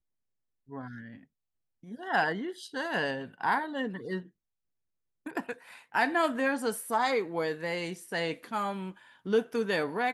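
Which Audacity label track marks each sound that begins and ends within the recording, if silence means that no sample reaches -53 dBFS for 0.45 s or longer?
0.680000	1.240000	sound
1.830000	4.290000	sound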